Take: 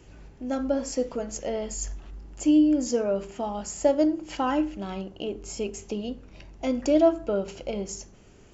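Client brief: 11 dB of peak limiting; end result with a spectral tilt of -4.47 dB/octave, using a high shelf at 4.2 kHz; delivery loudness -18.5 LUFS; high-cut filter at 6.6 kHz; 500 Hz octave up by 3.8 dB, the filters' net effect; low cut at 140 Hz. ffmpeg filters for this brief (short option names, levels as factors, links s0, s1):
-af "highpass=140,lowpass=6600,equalizer=f=500:t=o:g=5,highshelf=f=4200:g=-8.5,volume=3.16,alimiter=limit=0.422:level=0:latency=1"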